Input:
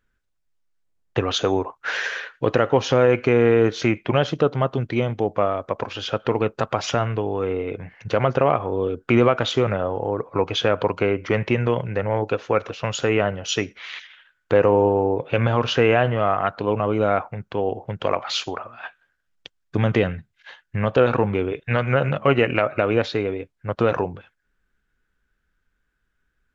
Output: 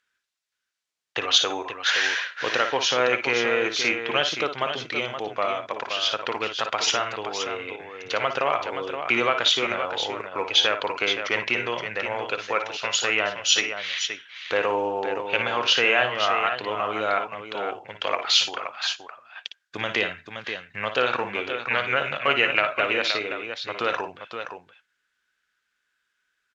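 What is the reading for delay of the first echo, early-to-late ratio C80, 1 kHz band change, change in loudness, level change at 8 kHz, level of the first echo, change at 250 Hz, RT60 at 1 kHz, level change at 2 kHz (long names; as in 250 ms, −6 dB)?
56 ms, no reverb audible, −1.5 dB, −2.0 dB, can't be measured, −8.5 dB, −12.0 dB, no reverb audible, +4.0 dB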